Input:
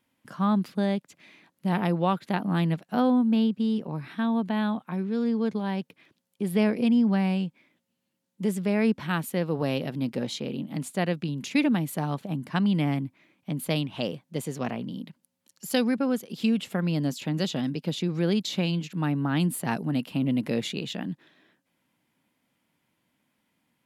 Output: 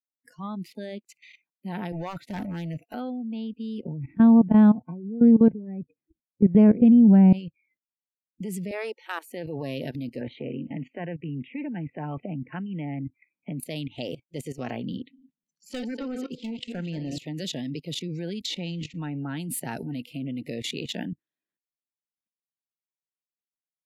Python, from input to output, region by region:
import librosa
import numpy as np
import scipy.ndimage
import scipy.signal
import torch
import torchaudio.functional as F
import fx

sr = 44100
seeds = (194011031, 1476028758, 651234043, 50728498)

y = fx.chain(x, sr, fx.highpass(hz=45.0, slope=24),
    fx.over_compress(threshold_db=-29.0, ratio=-1.0),
    fx.clip_hard(threshold_db=-28.5), at=(1.92, 2.94))
y = fx.chain(y, sr, fx.lowpass(hz=1500.0, slope=6),
    fx.tilt_eq(slope=-4.0), at=(3.84, 7.33))
y = fx.chain(y, sr, fx.highpass(hz=410.0, slope=24),
    fx.transformer_sat(knee_hz=760.0), at=(8.71, 9.3))
y = fx.chain(y, sr, fx.lowpass(hz=2500.0, slope=24),
    fx.band_squash(depth_pct=70), at=(10.21, 13.6))
y = fx.chain(y, sr, fx.reverse_delay_fb(ms=119, feedback_pct=51, wet_db=-10.0),
    fx.lowpass(hz=5200.0, slope=12),
    fx.clip_hard(threshold_db=-20.5), at=(14.96, 17.18))
y = fx.chain(y, sr, fx.law_mismatch(coded='mu'),
    fx.air_absorb(metres=58.0), at=(18.46, 19.24))
y = fx.level_steps(y, sr, step_db=18)
y = fx.noise_reduce_blind(y, sr, reduce_db=29)
y = F.gain(torch.from_numpy(y), 4.5).numpy()